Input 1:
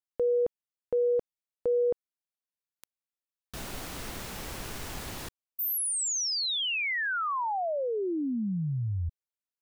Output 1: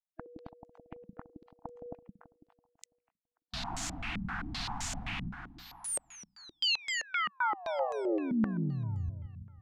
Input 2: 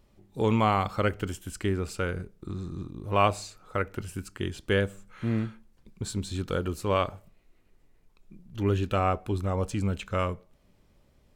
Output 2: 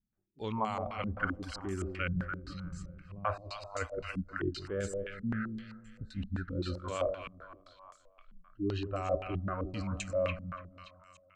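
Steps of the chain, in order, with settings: spectral noise reduction 28 dB; reverse; compression 6:1, threshold -35 dBFS; reverse; two-band feedback delay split 820 Hz, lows 166 ms, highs 289 ms, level -8 dB; step-sequenced low-pass 7.7 Hz 200–7100 Hz; trim +1 dB

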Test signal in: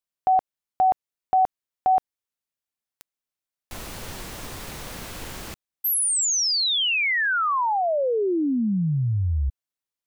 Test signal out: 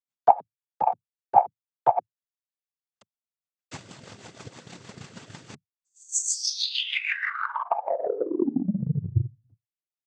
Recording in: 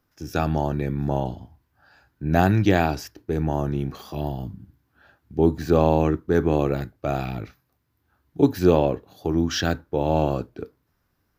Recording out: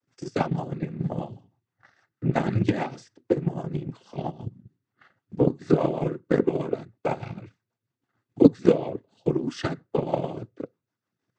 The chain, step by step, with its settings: rotary cabinet horn 6.3 Hz; noise-vocoded speech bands 16; transient shaper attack +12 dB, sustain -4 dB; trim -6 dB

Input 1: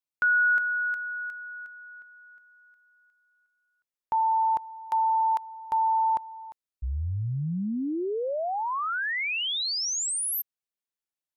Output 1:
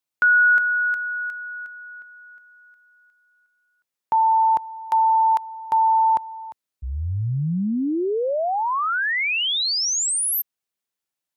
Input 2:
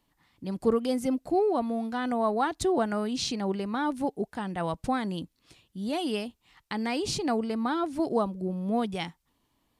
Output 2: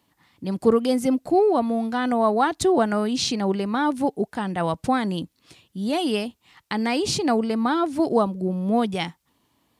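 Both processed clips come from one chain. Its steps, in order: high-pass 81 Hz; trim +6.5 dB

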